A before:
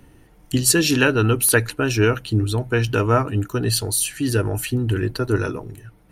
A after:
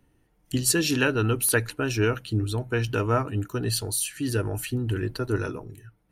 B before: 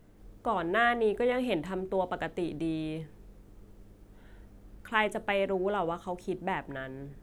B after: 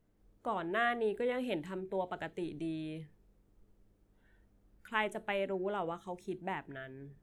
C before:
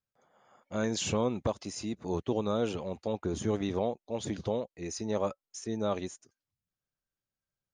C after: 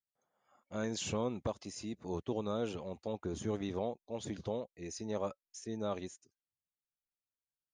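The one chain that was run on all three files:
noise reduction from a noise print of the clip's start 9 dB
level −6 dB

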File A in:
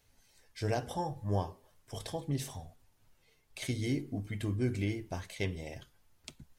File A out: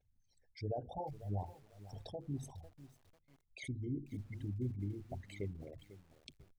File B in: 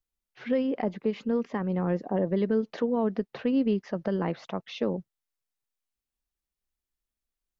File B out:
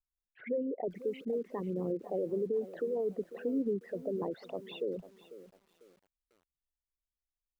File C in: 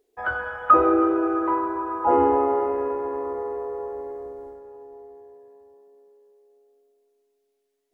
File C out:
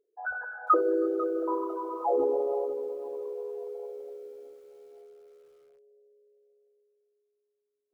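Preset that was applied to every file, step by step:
spectral envelope exaggerated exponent 3
feedback echo at a low word length 497 ms, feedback 35%, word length 8 bits, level −15 dB
level −7 dB

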